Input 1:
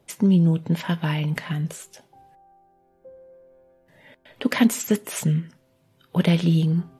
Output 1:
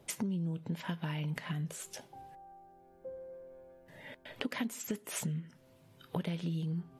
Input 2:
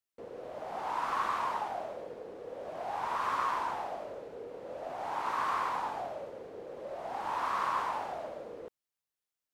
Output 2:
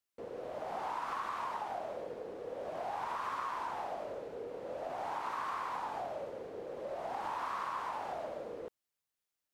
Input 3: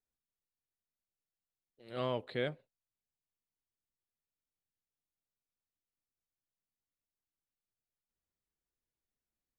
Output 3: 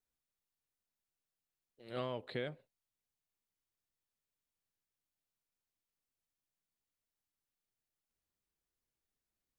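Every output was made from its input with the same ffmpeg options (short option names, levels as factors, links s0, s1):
-af "acompressor=threshold=0.0158:ratio=6,volume=1.12"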